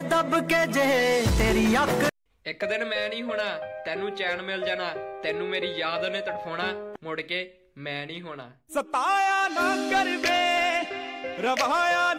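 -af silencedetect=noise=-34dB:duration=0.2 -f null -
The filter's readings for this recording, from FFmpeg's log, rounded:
silence_start: 2.09
silence_end: 2.46 | silence_duration: 0.37
silence_start: 7.45
silence_end: 7.80 | silence_duration: 0.35
silence_start: 8.45
silence_end: 8.72 | silence_duration: 0.27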